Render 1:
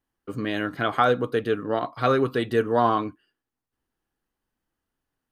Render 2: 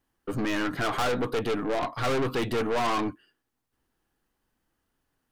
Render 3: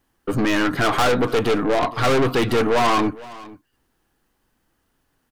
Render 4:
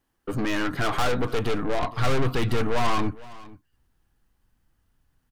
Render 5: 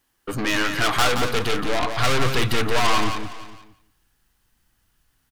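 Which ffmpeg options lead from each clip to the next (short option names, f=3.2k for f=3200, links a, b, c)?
-af "aeval=exprs='(tanh(35.5*val(0)+0.35)-tanh(0.35))/35.5':c=same,volume=6.5dB"
-af "aecho=1:1:461:0.1,volume=8.5dB"
-af "asubboost=boost=4.5:cutoff=160,volume=-6.5dB"
-af "tiltshelf=f=1.3k:g=-5.5,aecho=1:1:174|348|522:0.447|0.0759|0.0129,volume=5dB"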